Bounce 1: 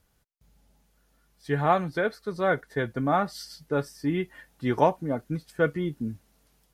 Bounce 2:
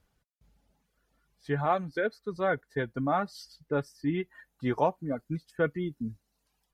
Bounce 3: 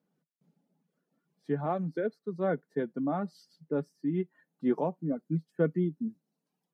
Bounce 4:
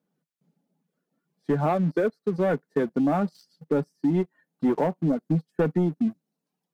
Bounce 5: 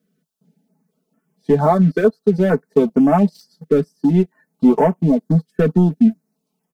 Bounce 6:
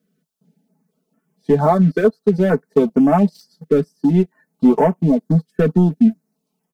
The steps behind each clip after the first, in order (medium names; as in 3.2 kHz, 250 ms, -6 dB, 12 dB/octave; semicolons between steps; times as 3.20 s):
reverb removal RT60 1.2 s; treble shelf 6.3 kHz -8.5 dB; in parallel at -2.5 dB: peak limiter -16.5 dBFS, peak gain reduction 9.5 dB; on the sum: trim -7 dB
elliptic high-pass 160 Hz; tilt shelf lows +9 dB, about 630 Hz; random flutter of the level, depth 60%
waveshaping leveller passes 2; compression, threshold -24 dBFS, peak gain reduction 6 dB; trim +4.5 dB
comb 4.6 ms; step-sequenced notch 4.4 Hz 890–4000 Hz; trim +8 dB
hard clipper -5 dBFS, distortion -37 dB